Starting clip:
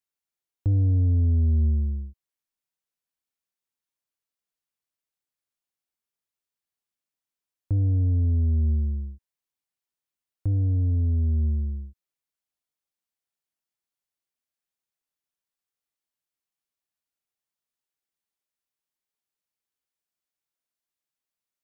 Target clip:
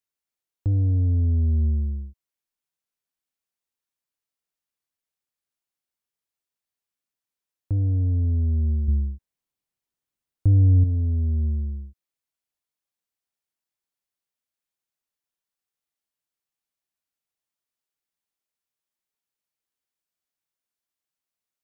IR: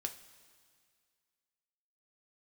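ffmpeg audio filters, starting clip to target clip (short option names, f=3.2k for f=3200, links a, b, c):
-filter_complex "[0:a]asettb=1/sr,asplit=3[a][b][c];[a]atrim=end=8.884[d];[b]atrim=start=8.88:end=10.84,asetpts=PTS-STARTPTS,afade=t=in:d=0.004:c=qsin,afade=t=out:st=1.956:d=0.004:c=qsin,lowshelf=f=450:g=7.5[e];[c]atrim=start=10.836[f];[d][e]acrossfade=d=0.004:c1=hsin:c2=qsin[g];[g][f]acrossfade=d=0.004:c1=qsin:c2=hsin"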